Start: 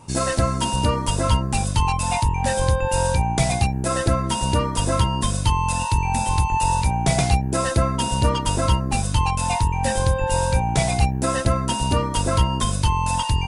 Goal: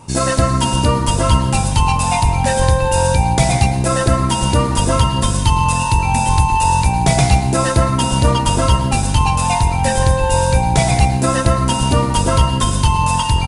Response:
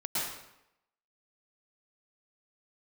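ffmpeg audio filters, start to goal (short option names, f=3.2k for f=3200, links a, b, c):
-filter_complex "[0:a]aecho=1:1:1097:0.112,asplit=2[a][b];[1:a]atrim=start_sample=2205[c];[b][c]afir=irnorm=-1:irlink=0,volume=-12.5dB[d];[a][d]amix=inputs=2:normalize=0,volume=4dB"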